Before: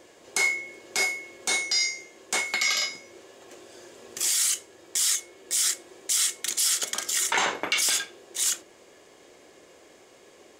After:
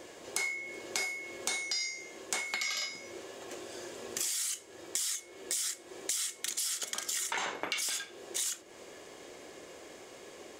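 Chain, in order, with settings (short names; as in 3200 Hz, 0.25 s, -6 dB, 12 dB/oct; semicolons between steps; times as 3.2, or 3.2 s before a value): compressor 6:1, threshold -36 dBFS, peak gain reduction 15 dB; gain +3.5 dB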